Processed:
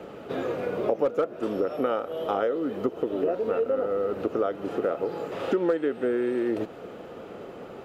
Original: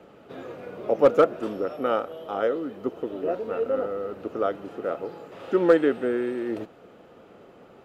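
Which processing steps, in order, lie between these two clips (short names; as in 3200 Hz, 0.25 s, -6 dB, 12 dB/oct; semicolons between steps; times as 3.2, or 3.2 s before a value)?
bell 440 Hz +2.5 dB 0.83 oct; compressor 6:1, threshold -31 dBFS, peak gain reduction 19 dB; gain +8 dB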